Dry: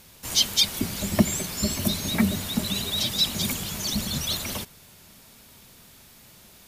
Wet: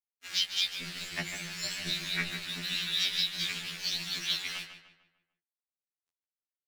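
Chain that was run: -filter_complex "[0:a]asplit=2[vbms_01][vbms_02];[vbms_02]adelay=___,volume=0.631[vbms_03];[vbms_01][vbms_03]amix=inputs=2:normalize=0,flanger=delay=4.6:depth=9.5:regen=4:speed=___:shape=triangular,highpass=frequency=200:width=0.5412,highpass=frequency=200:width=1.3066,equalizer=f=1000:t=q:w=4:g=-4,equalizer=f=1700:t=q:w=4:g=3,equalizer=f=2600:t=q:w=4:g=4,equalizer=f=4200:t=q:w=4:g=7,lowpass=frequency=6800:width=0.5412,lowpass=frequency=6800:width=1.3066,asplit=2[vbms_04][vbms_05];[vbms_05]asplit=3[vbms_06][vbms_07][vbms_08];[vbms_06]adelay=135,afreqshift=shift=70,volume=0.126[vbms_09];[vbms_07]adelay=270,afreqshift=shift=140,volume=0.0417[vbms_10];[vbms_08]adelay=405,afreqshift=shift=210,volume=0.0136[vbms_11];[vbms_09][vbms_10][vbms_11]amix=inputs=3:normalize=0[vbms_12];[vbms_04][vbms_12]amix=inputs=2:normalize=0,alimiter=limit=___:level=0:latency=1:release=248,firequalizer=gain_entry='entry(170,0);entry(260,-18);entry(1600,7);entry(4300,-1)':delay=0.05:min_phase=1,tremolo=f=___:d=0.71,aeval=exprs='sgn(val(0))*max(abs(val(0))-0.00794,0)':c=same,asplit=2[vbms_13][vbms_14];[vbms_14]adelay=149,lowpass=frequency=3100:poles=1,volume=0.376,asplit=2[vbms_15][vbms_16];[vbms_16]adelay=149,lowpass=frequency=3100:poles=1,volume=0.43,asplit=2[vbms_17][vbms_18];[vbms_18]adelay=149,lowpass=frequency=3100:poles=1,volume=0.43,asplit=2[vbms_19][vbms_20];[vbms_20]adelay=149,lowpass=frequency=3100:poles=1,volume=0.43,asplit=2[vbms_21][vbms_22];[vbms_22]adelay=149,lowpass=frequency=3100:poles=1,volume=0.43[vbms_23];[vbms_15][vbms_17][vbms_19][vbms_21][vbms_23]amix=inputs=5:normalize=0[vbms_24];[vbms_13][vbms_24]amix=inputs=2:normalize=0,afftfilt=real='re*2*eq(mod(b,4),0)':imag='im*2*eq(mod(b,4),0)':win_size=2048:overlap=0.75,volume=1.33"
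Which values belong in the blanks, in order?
12, 0.72, 0.211, 190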